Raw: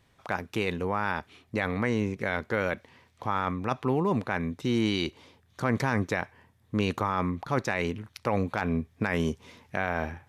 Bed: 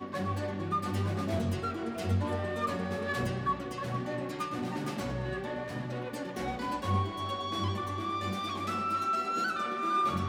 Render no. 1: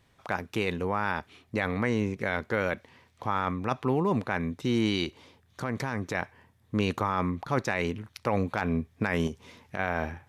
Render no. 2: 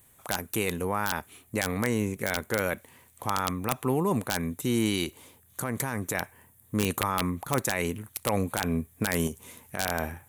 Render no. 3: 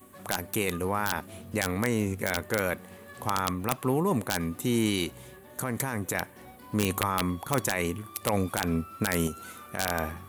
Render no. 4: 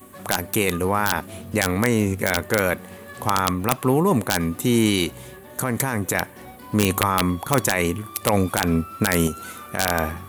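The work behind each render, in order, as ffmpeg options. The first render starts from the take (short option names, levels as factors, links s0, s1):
-filter_complex "[0:a]asettb=1/sr,asplit=3[s0][s1][s2];[s0]atrim=end=5.044[s3];[s1]atrim=start=5.04:end=6.15,asetpts=PTS-STARTPTS,afade=t=in:d=0.004:c=qsin,afade=t=out:st=1.106:d=0.004:c=qsin,acompressor=threshold=0.0316:ratio=2:attack=3.2:release=140:knee=1:detection=peak[s4];[s2]atrim=start=6.146[s5];[s3][s4]acrossfade=d=0.004:c1=hsin:c2=qsin[s6];[s6][s5]acrossfade=d=0.004:c1=qsin:c2=hsin,asettb=1/sr,asplit=3[s7][s8][s9];[s7]atrim=end=9.274[s10];[s8]atrim=start=9.27:end=9.79,asetpts=PTS-STARTPTS,afade=t=in:d=0.004:c=qsin,afade=t=out:st=0.516:d=0.004:c=qsin,acompressor=threshold=0.0282:ratio=3:attack=3.2:release=140:knee=1:detection=peak[s11];[s9]atrim=start=9.786[s12];[s10][s11]acrossfade=d=0.004:c1=hsin:c2=qsin[s13];[s13][s12]acrossfade=d=0.004:c1=qsin:c2=hsin"
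-af "aexciter=amount=13.6:drive=4.7:freq=7500,aeval=exprs='(mod(4.73*val(0)+1,2)-1)/4.73':c=same"
-filter_complex "[1:a]volume=0.188[s0];[0:a][s0]amix=inputs=2:normalize=0"
-af "volume=2.37"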